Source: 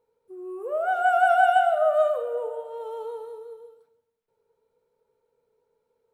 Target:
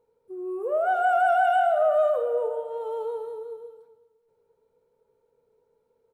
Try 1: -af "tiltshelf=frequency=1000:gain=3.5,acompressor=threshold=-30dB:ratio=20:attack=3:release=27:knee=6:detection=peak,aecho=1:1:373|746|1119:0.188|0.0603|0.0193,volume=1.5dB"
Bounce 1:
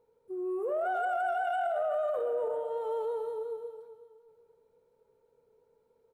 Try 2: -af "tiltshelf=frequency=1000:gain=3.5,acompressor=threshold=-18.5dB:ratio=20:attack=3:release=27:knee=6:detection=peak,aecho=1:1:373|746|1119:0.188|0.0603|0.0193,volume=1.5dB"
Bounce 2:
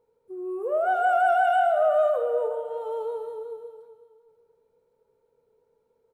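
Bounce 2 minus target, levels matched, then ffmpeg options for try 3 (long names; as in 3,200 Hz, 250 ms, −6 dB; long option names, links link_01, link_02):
echo-to-direct +7.5 dB
-af "tiltshelf=frequency=1000:gain=3.5,acompressor=threshold=-18.5dB:ratio=20:attack=3:release=27:knee=6:detection=peak,aecho=1:1:373|746:0.0794|0.0254,volume=1.5dB"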